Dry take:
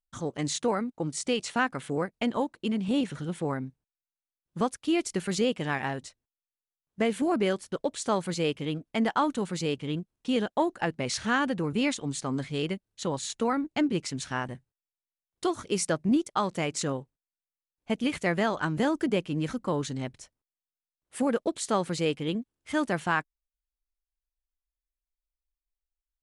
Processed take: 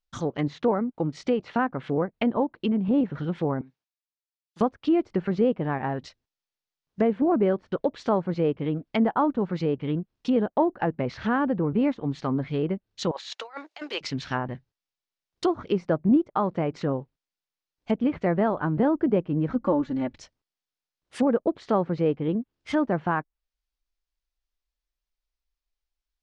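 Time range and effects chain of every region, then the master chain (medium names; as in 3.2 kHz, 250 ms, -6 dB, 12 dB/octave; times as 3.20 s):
3.61–4.61 s: compression, threshold -41 dBFS + high-pass 950 Hz 6 dB/octave + three bands expanded up and down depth 100%
13.11–14.01 s: high-pass 570 Hz 24 dB/octave + compressor with a negative ratio -38 dBFS, ratio -0.5 + tape noise reduction on one side only encoder only
19.55–20.18 s: peaking EQ 7.3 kHz +8.5 dB 0.26 oct + comb 3.5 ms, depth 73%
whole clip: low-pass that closes with the level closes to 1 kHz, closed at -26 dBFS; resonant high shelf 6.9 kHz -9.5 dB, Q 1.5; trim +4.5 dB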